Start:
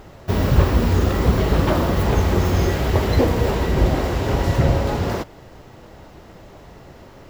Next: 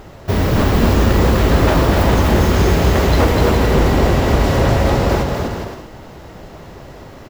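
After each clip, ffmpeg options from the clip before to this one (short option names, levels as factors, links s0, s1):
-filter_complex "[0:a]aeval=exprs='0.211*(abs(mod(val(0)/0.211+3,4)-2)-1)':c=same,asplit=2[s0][s1];[s1]aecho=0:1:250|412.5|518.1|586.8|631.4:0.631|0.398|0.251|0.158|0.1[s2];[s0][s2]amix=inputs=2:normalize=0,volume=1.68"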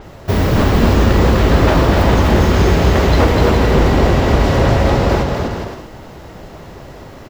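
-af "adynamicequalizer=threshold=0.00562:dfrequency=7500:dqfactor=0.7:tfrequency=7500:tqfactor=0.7:attack=5:release=100:ratio=0.375:range=4:mode=cutabove:tftype=highshelf,volume=1.19"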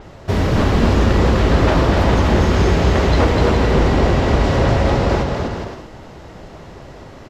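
-af "lowpass=8700,volume=0.75"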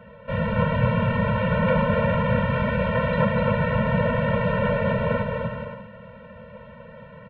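-af "highpass=f=220:t=q:w=0.5412,highpass=f=220:t=q:w=1.307,lowpass=f=3000:t=q:w=0.5176,lowpass=f=3000:t=q:w=0.7071,lowpass=f=3000:t=q:w=1.932,afreqshift=-110,afftfilt=real='re*eq(mod(floor(b*sr/1024/220),2),0)':imag='im*eq(mod(floor(b*sr/1024/220),2),0)':win_size=1024:overlap=0.75"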